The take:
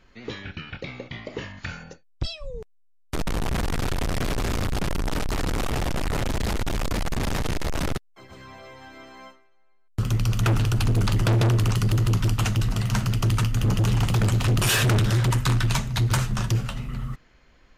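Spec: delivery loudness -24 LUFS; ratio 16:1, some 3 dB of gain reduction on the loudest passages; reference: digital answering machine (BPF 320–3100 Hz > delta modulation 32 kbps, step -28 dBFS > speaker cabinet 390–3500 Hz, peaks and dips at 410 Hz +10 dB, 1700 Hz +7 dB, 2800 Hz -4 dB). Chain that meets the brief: compressor 16:1, threshold -21 dBFS; BPF 320–3100 Hz; delta modulation 32 kbps, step -28 dBFS; speaker cabinet 390–3500 Hz, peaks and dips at 410 Hz +10 dB, 1700 Hz +7 dB, 2800 Hz -4 dB; gain +7 dB

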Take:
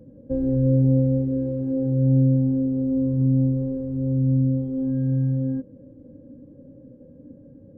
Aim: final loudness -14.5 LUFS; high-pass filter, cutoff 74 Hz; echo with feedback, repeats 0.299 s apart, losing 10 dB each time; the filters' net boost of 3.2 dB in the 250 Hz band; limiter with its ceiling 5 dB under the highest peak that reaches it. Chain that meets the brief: HPF 74 Hz; bell 250 Hz +3.5 dB; limiter -14 dBFS; feedback echo 0.299 s, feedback 32%, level -10 dB; gain +7.5 dB

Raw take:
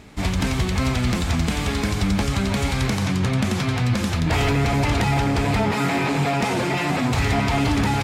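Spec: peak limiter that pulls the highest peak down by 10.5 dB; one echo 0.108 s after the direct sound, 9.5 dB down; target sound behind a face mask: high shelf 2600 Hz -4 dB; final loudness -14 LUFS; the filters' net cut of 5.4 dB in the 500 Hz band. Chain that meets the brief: bell 500 Hz -7.5 dB; limiter -21.5 dBFS; high shelf 2600 Hz -4 dB; echo 0.108 s -9.5 dB; gain +15.5 dB

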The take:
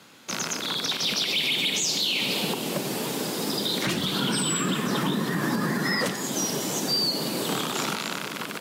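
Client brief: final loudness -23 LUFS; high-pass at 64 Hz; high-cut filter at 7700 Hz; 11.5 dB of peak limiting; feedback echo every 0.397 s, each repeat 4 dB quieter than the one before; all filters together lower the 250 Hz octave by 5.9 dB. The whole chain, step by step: HPF 64 Hz; LPF 7700 Hz; bell 250 Hz -8 dB; limiter -27 dBFS; feedback echo 0.397 s, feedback 63%, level -4 dB; gain +9 dB

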